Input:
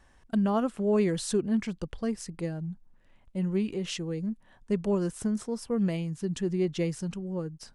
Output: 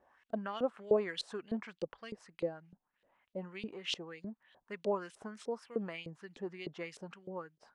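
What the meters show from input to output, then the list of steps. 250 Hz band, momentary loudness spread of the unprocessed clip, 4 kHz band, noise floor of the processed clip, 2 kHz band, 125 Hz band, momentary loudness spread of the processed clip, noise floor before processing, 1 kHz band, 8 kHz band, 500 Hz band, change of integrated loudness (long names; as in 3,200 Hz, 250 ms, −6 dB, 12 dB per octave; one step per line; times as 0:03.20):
−15.0 dB, 9 LU, −2.0 dB, below −85 dBFS, −2.0 dB, −18.5 dB, 15 LU, −61 dBFS, −5.5 dB, −15.5 dB, −6.0 dB, −9.5 dB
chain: auto-filter band-pass saw up 3.3 Hz 450–3,900 Hz
level +3.5 dB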